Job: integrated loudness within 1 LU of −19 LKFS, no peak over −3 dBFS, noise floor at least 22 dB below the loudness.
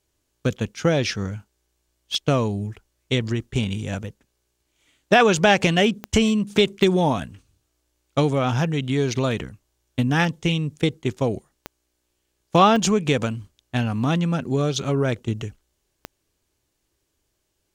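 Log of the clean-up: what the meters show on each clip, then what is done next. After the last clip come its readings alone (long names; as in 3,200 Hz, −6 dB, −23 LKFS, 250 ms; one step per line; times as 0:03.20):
number of clicks 5; integrated loudness −22.0 LKFS; sample peak −3.5 dBFS; target loudness −19.0 LKFS
→ click removal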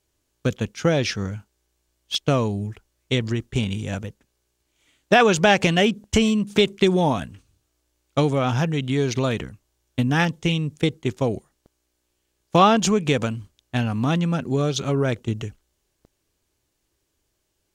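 number of clicks 0; integrated loudness −22.0 LKFS; sample peak −3.5 dBFS; target loudness −19.0 LKFS
→ level +3 dB
brickwall limiter −3 dBFS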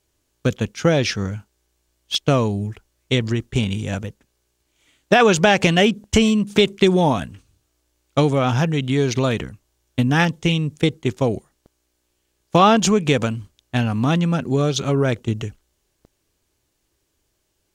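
integrated loudness −19.5 LKFS; sample peak −3.0 dBFS; background noise floor −71 dBFS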